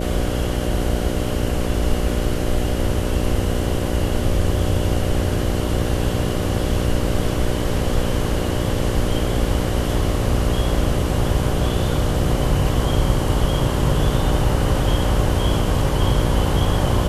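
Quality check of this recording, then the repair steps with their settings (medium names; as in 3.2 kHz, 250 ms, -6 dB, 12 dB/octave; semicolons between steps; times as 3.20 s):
buzz 60 Hz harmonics 10 -24 dBFS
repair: de-hum 60 Hz, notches 10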